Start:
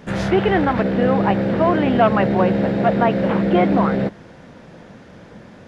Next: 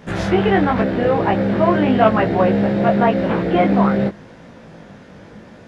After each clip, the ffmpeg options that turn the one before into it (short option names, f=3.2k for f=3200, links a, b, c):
-af "flanger=delay=17.5:depth=3:speed=0.88,volume=4dB"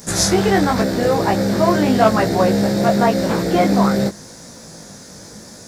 -af "aexciter=amount=10.4:drive=8.3:freq=4.5k"